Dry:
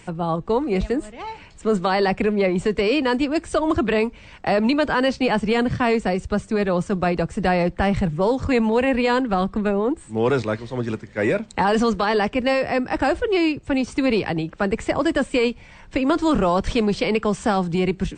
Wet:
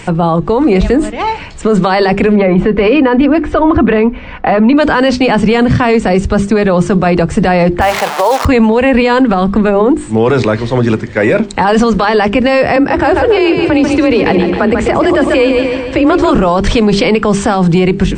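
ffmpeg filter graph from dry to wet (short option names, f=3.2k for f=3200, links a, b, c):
-filter_complex "[0:a]asettb=1/sr,asplit=3[a][b][c];[a]atrim=end=2.364[d];[b]atrim=start=2.36:end=4.77,asetpts=PTS-STARTPTS,afade=t=in:d=0.004:c=qsin,afade=t=out:st=2.406:d=0.004:c=qsin,lowpass=2.2k,aecho=1:1:4:0.34,atrim=end_sample=106281[e];[c]atrim=start=4.766[f];[d][e]acrossfade=d=0.004:c1=hsin:c2=qsin[g];[g][f]acrossfade=d=0.004:c1=qsin:c2=hsin,asettb=1/sr,asplit=3[h][i][j];[h]atrim=end=7.814[k];[i]atrim=start=7.81:end=8.45,asetpts=PTS-STARTPTS,afade=t=in:d=0.004:c=qsin,afade=t=out:st=0.636:d=0.004:c=qsin,acrusher=bits=6:dc=4:mix=0:aa=0.000001,highpass=f=730:t=q:w=1.6[l];[j]atrim=start=8.446[m];[k][l]acrossfade=d=0.004:c1=hsin:c2=qsin[n];[n][m]acrossfade=d=0.004:c1=qsin:c2=hsin,asettb=1/sr,asplit=3[o][p][q];[o]atrim=end=12.764[r];[p]atrim=start=12.76:end=16.31,asetpts=PTS-STARTPTS,afade=t=in:d=0.004:c=qsin,afade=t=out:st=3.546:d=0.004:c=qsin,highshelf=f=4.6k:g=-6.5,afreqshift=27,aecho=1:1:140|280|420|560|700|840:0.335|0.184|0.101|0.0557|0.0307|0.0169,atrim=end_sample=156555[s];[q]atrim=start=16.306[t];[r][s]acrossfade=d=0.004:c1=hsin:c2=qsin[u];[u][t]acrossfade=d=0.004:c1=qsin:c2=hsin,highshelf=f=6.4k:g=-6.5,bandreject=f=50:t=h:w=6,bandreject=f=100:t=h:w=6,bandreject=f=150:t=h:w=6,bandreject=f=200:t=h:w=6,bandreject=f=250:t=h:w=6,bandreject=f=300:t=h:w=6,bandreject=f=350:t=h:w=6,bandreject=f=400:t=h:w=6,alimiter=level_in=19dB:limit=-1dB:release=50:level=0:latency=1,volume=-1dB"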